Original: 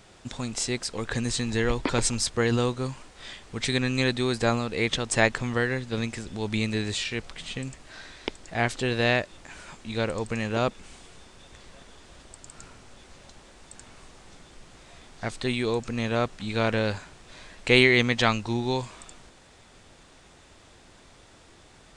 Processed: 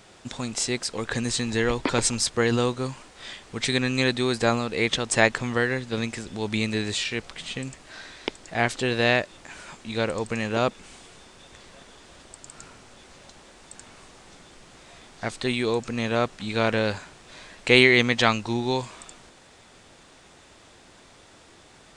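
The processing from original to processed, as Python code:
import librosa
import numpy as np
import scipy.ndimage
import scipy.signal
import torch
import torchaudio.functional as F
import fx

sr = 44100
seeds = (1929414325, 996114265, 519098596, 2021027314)

y = fx.low_shelf(x, sr, hz=93.0, db=-9.0)
y = y * 10.0 ** (2.5 / 20.0)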